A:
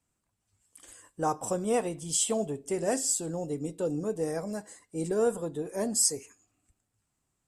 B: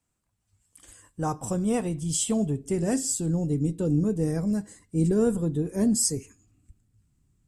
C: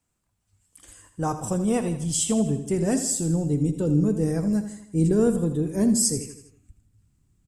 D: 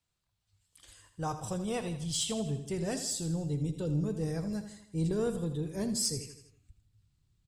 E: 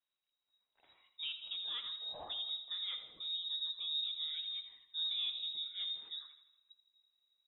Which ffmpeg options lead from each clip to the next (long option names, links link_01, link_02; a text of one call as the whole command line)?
ffmpeg -i in.wav -af "asubboost=boost=8.5:cutoff=230" out.wav
ffmpeg -i in.wav -af "aecho=1:1:81|162|243|324|405:0.282|0.141|0.0705|0.0352|0.0176,volume=2dB" out.wav
ffmpeg -i in.wav -af "equalizer=frequency=125:width_type=o:width=1:gain=3,equalizer=frequency=250:width_type=o:width=1:gain=-8,equalizer=frequency=4000:width_type=o:width=1:gain=11,equalizer=frequency=8000:width_type=o:width=1:gain=-5,asoftclip=type=tanh:threshold=-13dB,volume=-7dB" out.wav
ffmpeg -i in.wav -af "lowpass=frequency=3300:width_type=q:width=0.5098,lowpass=frequency=3300:width_type=q:width=0.6013,lowpass=frequency=3300:width_type=q:width=0.9,lowpass=frequency=3300:width_type=q:width=2.563,afreqshift=-3900,volume=-7.5dB" out.wav